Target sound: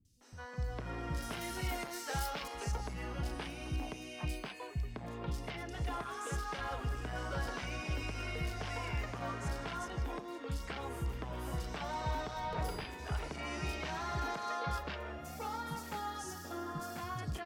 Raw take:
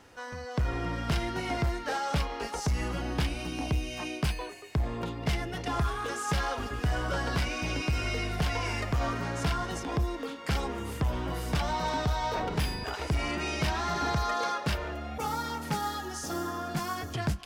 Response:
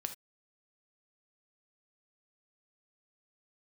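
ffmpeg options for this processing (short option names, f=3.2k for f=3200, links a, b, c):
-filter_complex "[0:a]asettb=1/sr,asplit=3[a][b][c];[a]atrim=end=1.174[d];[b]atrim=start=1.17:end=2.43,asetpts=PTS-STARTPTS,afade=t=in:d=0.004:c=qsin,afade=t=out:st=1.256:d=0.004:c=qsin,aemphasis=mode=production:type=75fm[e];[c]atrim=start=2.426[f];[d][e]acrossfade=d=0.004:c1=hsin:c2=qsin[g];[g][f]acrossfade=d=0.004:c1=qsin:c2=hsin,asoftclip=type=tanh:threshold=-20dB,acrossover=split=210|4500[h][i][j];[j]adelay=50[k];[i]adelay=210[l];[h][l][k]amix=inputs=3:normalize=0,volume=-7dB"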